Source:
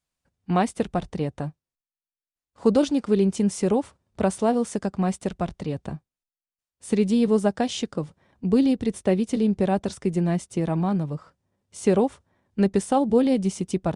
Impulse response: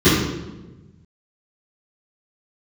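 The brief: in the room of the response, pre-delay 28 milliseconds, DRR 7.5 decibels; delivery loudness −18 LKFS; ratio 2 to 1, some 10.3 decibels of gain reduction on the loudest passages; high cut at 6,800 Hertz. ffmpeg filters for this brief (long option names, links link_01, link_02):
-filter_complex "[0:a]lowpass=6800,acompressor=threshold=-34dB:ratio=2,asplit=2[link_01][link_02];[1:a]atrim=start_sample=2205,adelay=28[link_03];[link_02][link_03]afir=irnorm=-1:irlink=0,volume=-32.5dB[link_04];[link_01][link_04]amix=inputs=2:normalize=0,volume=10.5dB"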